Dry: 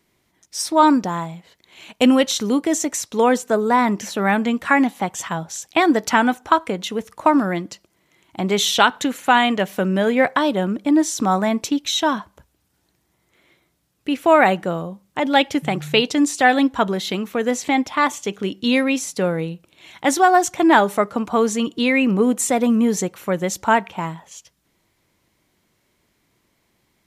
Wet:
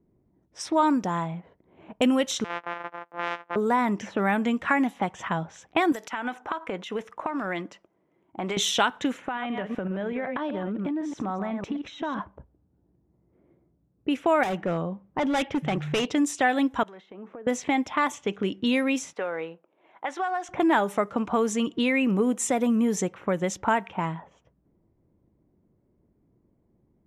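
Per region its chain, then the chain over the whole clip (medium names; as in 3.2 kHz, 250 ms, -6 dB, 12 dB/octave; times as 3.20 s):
2.44–3.56 s: sorted samples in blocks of 256 samples + high-pass 1 kHz + tape spacing loss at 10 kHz 22 dB
5.92–8.57 s: RIAA curve recording + compression 12:1, threshold -24 dBFS
9.12–12.19 s: chunks repeated in reverse 126 ms, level -9.5 dB + compression 8:1, threshold -27 dBFS
14.43–16.09 s: peaking EQ 8.3 kHz -4.5 dB 1 oct + hard clipper -19 dBFS
16.83–17.47 s: frequency weighting A + compression 16:1, threshold -36 dBFS + transformer saturation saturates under 1.2 kHz
19.13–20.49 s: block-companded coder 7-bit + high-pass 630 Hz + compression 3:1, threshold -26 dBFS
whole clip: peaking EQ 4.4 kHz -9.5 dB 0.32 oct; compression 2:1, threshold -32 dBFS; level-controlled noise filter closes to 390 Hz, open at -24 dBFS; trim +3.5 dB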